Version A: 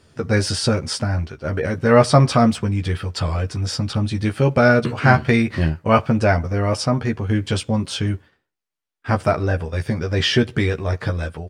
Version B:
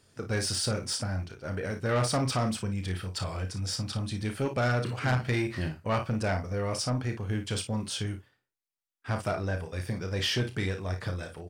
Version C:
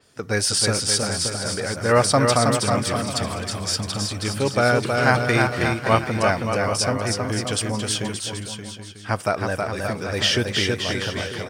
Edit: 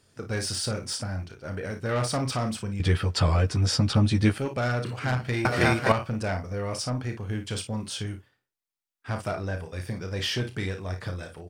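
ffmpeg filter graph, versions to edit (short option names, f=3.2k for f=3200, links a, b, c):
-filter_complex "[1:a]asplit=3[a][b][c];[a]atrim=end=2.802[d];[0:a]atrim=start=2.798:end=4.382[e];[b]atrim=start=4.378:end=5.452[f];[2:a]atrim=start=5.448:end=5.922[g];[c]atrim=start=5.918[h];[d][e]acrossfade=d=0.004:c1=hsin:c2=hsin[i];[i][f]acrossfade=d=0.004:c1=hsin:c2=hsin[j];[j][g]acrossfade=d=0.004:c1=hsin:c2=hsin[k];[k][h]acrossfade=d=0.004:c1=hsin:c2=hsin"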